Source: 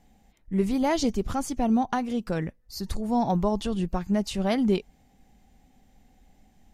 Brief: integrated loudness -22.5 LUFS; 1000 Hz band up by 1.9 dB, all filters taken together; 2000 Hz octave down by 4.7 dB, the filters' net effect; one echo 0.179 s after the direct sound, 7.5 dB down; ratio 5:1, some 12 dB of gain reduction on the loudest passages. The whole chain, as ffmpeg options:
-af "equalizer=f=1k:t=o:g=4,equalizer=f=2k:t=o:g=-7.5,acompressor=threshold=-33dB:ratio=5,aecho=1:1:179:0.422,volume=13.5dB"

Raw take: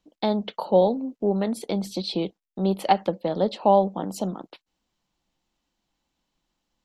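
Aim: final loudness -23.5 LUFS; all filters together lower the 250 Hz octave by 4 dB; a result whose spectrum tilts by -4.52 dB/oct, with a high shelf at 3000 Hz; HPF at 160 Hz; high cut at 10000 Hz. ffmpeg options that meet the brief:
-af "highpass=160,lowpass=10k,equalizer=f=250:t=o:g=-4,highshelf=f=3k:g=8.5,volume=1.5dB"

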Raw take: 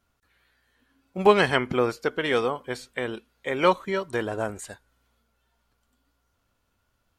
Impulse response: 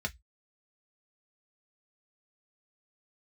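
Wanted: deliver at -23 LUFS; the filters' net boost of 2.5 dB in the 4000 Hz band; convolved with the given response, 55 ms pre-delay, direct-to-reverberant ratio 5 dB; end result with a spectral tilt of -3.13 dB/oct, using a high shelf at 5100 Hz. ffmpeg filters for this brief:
-filter_complex "[0:a]equalizer=f=4k:t=o:g=6.5,highshelf=f=5.1k:g=-7.5,asplit=2[a][b];[1:a]atrim=start_sample=2205,adelay=55[c];[b][c]afir=irnorm=-1:irlink=0,volume=-8.5dB[d];[a][d]amix=inputs=2:normalize=0,volume=1dB"

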